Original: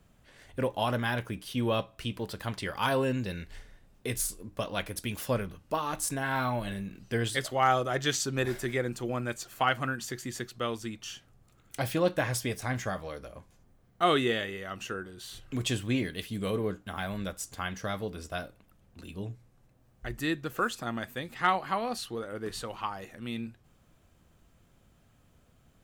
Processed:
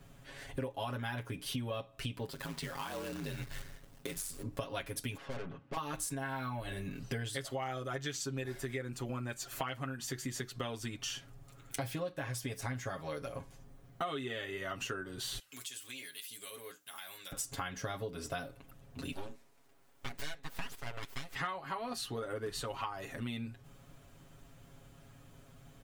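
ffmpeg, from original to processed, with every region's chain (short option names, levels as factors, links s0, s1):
-filter_complex "[0:a]asettb=1/sr,asplit=3[s0][s1][s2];[s0]atrim=end=2.284[s3];[s1]atrim=start=2.28:end=4.43,asetpts=PTS-STARTPTS,afade=t=in:d=0.004:c=qsin,afade=t=out:st=2.146:d=0.004:c=qsin,acompressor=threshold=0.01:ratio=4:attack=3.2:release=140:knee=1:detection=peak,aeval=exprs='val(0)*sin(2*PI*48*n/s)':c=same,acrusher=bits=2:mode=log:mix=0:aa=0.000001[s4];[s2]atrim=start=4.426[s5];[s3][s4]acrossfade=d=0.004:c1=hsin:c2=qsin[s6];[s6][s5]acrossfade=d=0.004:c1=qsin:c2=hsin,asettb=1/sr,asplit=3[s7][s8][s9];[s7]atrim=end=5.174[s10];[s8]atrim=start=5.17:end=5.77,asetpts=PTS-STARTPTS,afade=t=in:d=0.004:c=qsin,afade=t=out:st=0.596:d=0.004:c=qsin,highpass=140,lowpass=2200,aeval=exprs='(tanh(126*val(0)+0.6)-tanh(0.6))/126':c=same[s11];[s9]atrim=start=5.766[s12];[s10][s11]acrossfade=d=0.004:c1=hsin:c2=qsin[s13];[s13][s12]acrossfade=d=0.004:c1=qsin:c2=hsin,asettb=1/sr,asplit=3[s14][s15][s16];[s14]atrim=end=15.394[s17];[s15]atrim=start=15.39:end=17.32,asetpts=PTS-STARTPTS,afade=t=in:d=0.004:c=qsin,afade=t=out:st=1.926:d=0.004:c=qsin,aderivative,acompressor=threshold=0.00398:ratio=4:attack=3.2:release=140:knee=1:detection=peak[s18];[s16]atrim=start=17.316[s19];[s17][s18]acrossfade=d=0.004:c1=hsin:c2=qsin[s20];[s20][s19]acrossfade=d=0.004:c1=qsin:c2=hsin,asettb=1/sr,asplit=3[s21][s22][s23];[s21]atrim=end=19.124[s24];[s22]atrim=start=19.12:end=21.35,asetpts=PTS-STARTPTS,afade=t=in:d=0.004:c=qsin,afade=t=out:st=2.226:d=0.004:c=qsin,highpass=f=410:p=1,aeval=exprs='abs(val(0))':c=same[s25];[s23]atrim=start=21.346[s26];[s24][s25]acrossfade=d=0.004:c1=hsin:c2=qsin[s27];[s27][s26]acrossfade=d=0.004:c1=qsin:c2=hsin,aecho=1:1:7.3:0.92,acompressor=threshold=0.0112:ratio=10,volume=1.5"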